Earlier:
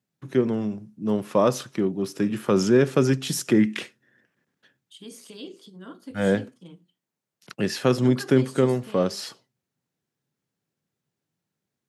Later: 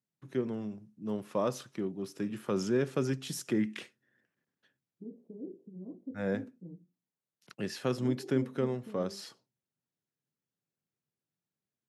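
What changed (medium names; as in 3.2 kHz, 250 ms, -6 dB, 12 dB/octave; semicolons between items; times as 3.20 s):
first voice -11.0 dB; second voice: add Gaussian low-pass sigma 17 samples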